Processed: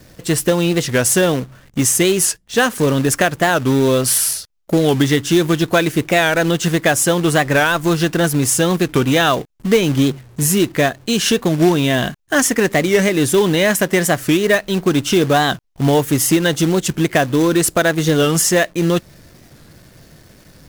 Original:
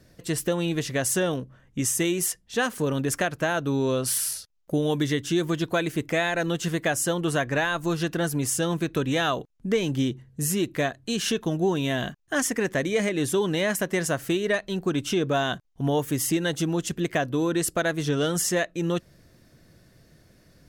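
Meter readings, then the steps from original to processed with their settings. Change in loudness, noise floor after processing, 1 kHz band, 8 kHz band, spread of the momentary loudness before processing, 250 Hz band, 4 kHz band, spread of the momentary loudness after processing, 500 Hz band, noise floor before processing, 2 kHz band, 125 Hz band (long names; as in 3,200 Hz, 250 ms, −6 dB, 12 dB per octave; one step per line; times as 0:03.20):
+10.0 dB, −47 dBFS, +10.5 dB, +10.5 dB, 4 LU, +10.0 dB, +10.5 dB, 4 LU, +10.0 dB, −58 dBFS, +10.0 dB, +10.0 dB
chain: in parallel at +2 dB: log-companded quantiser 4 bits
on the sum: wow of a warped record 45 rpm, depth 160 cents
level +3 dB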